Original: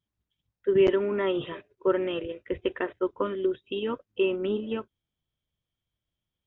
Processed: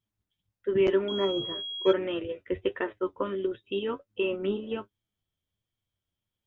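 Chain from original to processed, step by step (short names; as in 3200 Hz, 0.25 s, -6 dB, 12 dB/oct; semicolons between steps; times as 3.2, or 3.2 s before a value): flange 1.4 Hz, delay 8.8 ms, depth 2.5 ms, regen +41%; 1.08–1.93 pulse-width modulation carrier 3300 Hz; gain +3 dB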